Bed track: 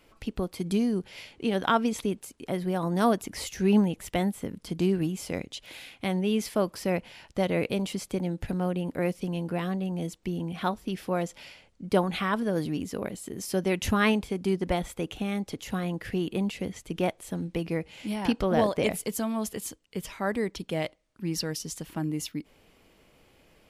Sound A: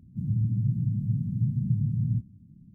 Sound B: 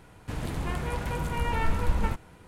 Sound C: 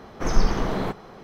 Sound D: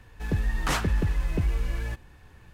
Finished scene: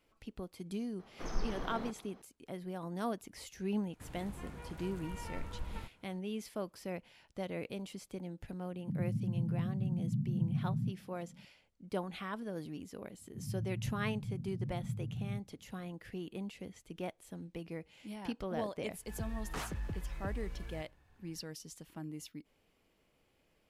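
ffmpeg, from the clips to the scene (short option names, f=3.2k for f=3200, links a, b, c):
-filter_complex "[1:a]asplit=2[a][b];[0:a]volume=-13.5dB[c];[3:a]equalizer=f=90:w=1.5:g=-6.5[d];[a]highpass=f=170:t=q:w=1.9[e];[4:a]equalizer=f=710:t=o:w=0.77:g=3[f];[d]atrim=end=1.23,asetpts=PTS-STARTPTS,volume=-16dB,afade=t=in:d=0.004:c=hsin,afade=t=out:st=1.226:d=0.004:c=hsin,adelay=990[g];[2:a]atrim=end=2.47,asetpts=PTS-STARTPTS,volume=-16.5dB,afade=t=in:d=0.004:c=hsin,afade=t=out:st=2.466:d=0.004:c=hsin,adelay=3720[h];[e]atrim=end=2.74,asetpts=PTS-STARTPTS,volume=-9dB,afade=t=in:d=0.004:c=hsin,afade=t=out:st=2.736:d=0.004:c=hsin,adelay=8710[i];[b]atrim=end=2.74,asetpts=PTS-STARTPTS,volume=-13.5dB,afade=t=in:d=0.004:c=hsin,afade=t=out:st=2.736:d=0.004:c=hsin,adelay=13190[j];[f]atrim=end=2.53,asetpts=PTS-STARTPTS,volume=-15dB,afade=t=in:d=0.004:c=hsin,afade=t=out:st=2.526:d=0.004:c=hsin,adelay=18870[k];[c][g][h][i][j][k]amix=inputs=6:normalize=0"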